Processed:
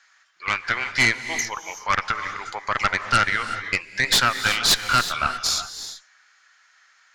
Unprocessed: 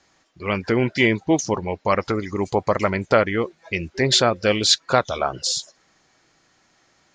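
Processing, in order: resonant high-pass 1500 Hz, resonance Q 2.9; added harmonics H 3 -9 dB, 5 -9 dB, 6 -15 dB, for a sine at 0.5 dBFS; non-linear reverb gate 0.4 s rising, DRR 9.5 dB; gain -4.5 dB

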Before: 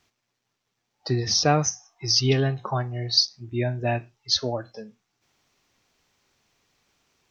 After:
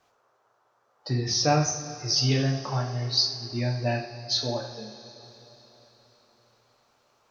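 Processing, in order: two-slope reverb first 0.49 s, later 4.2 s, from -17 dB, DRR 0 dB; band noise 400–1400 Hz -63 dBFS; gain -5.5 dB

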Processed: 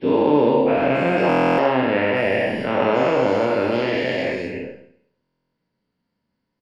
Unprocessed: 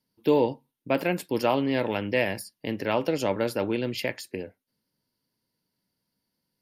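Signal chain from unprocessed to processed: spectral dilation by 0.48 s; LPF 2400 Hz 12 dB/oct; doubler 23 ms -12 dB; Schroeder reverb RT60 0.65 s, combs from 27 ms, DRR 3.5 dB; stuck buffer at 1.28/5.23, samples 1024, times 12; gain -1 dB

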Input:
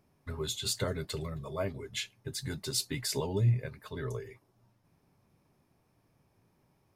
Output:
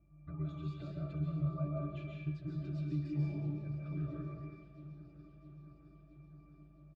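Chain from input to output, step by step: LPF 4100 Hz 12 dB/oct; comb 5.9 ms, depth 88%; compressor, threshold -37 dBFS, peak gain reduction 15 dB; hum 50 Hz, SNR 20 dB; octave resonator D, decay 0.26 s; echo with dull and thin repeats by turns 0.333 s, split 2100 Hz, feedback 81%, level -12 dB; reverb RT60 0.85 s, pre-delay 0.1 s, DRR -2 dB; gain +10.5 dB

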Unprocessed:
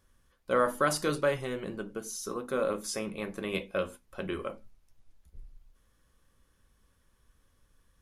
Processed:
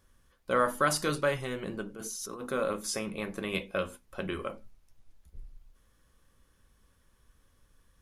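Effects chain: dynamic EQ 420 Hz, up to -4 dB, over -37 dBFS, Q 0.76; 1.94–2.49 negative-ratio compressor -42 dBFS, ratio -1; gain +2 dB

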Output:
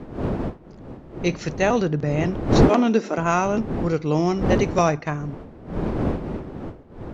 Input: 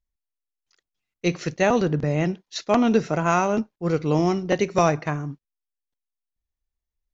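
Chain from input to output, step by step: wind noise 350 Hz -26 dBFS; 2.69–3.18 brick-wall FIR high-pass 180 Hz

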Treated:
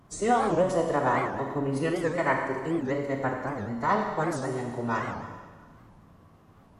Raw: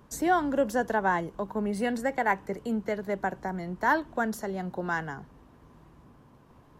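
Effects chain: formant-preserving pitch shift -7 st; Schroeder reverb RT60 1.5 s, combs from 30 ms, DRR 2 dB; record warp 78 rpm, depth 250 cents

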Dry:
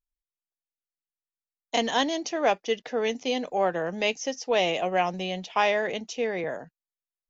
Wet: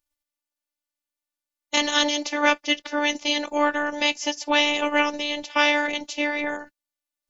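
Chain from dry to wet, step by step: spectral limiter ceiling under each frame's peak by 16 dB; robotiser 294 Hz; gain +6 dB

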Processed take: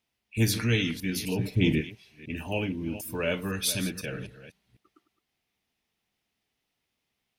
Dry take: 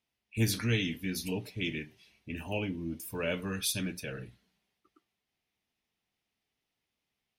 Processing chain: reverse delay 0.251 s, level -13 dB; 1.39–1.81 low shelf 450 Hz +11.5 dB; gain +4 dB

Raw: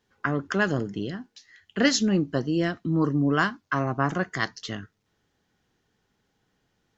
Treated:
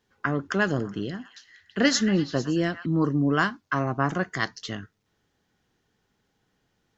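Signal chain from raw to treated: 0.69–2.86 delay with a stepping band-pass 0.113 s, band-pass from 1300 Hz, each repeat 0.7 oct, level -7 dB

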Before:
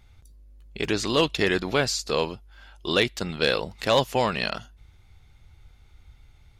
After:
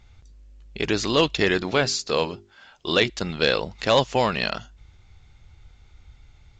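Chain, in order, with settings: 1.54–3.1 notches 50/100/150/200/250/300/350/400 Hz; gain +2 dB; A-law 128 kbps 16000 Hz

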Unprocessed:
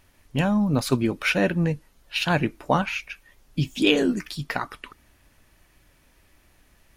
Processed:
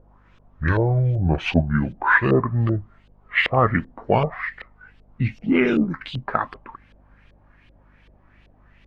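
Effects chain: speed glide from 55% -> 102%; LFO low-pass saw up 2.6 Hz 500–3400 Hz; hum 50 Hz, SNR 33 dB; gain +1.5 dB

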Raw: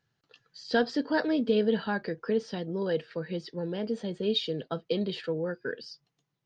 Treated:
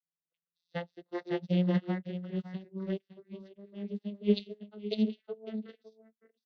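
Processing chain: vocoder on a gliding note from E3, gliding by +6 st; band shelf 3000 Hz +9.5 dB 1.3 oct; echo 0.558 s -4.5 dB; upward expander 2.5:1, over -43 dBFS; gain +2 dB

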